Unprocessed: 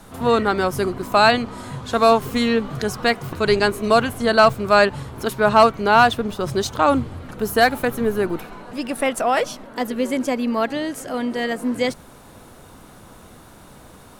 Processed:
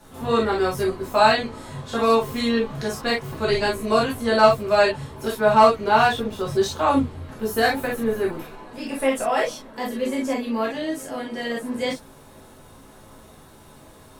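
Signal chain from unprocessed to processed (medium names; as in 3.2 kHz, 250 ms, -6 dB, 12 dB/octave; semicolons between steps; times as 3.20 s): gated-style reverb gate 80 ms flat, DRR -5 dB; trim -9 dB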